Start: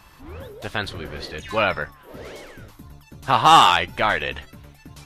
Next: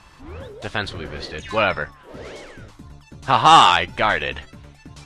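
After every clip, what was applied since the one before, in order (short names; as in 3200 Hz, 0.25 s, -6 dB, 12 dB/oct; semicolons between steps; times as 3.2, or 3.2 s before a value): LPF 9100 Hz 24 dB/oct; gain +1.5 dB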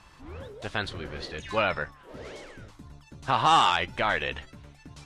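limiter -6.5 dBFS, peak gain reduction 5 dB; gain -5.5 dB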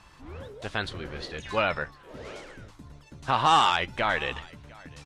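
echo 0.703 s -23.5 dB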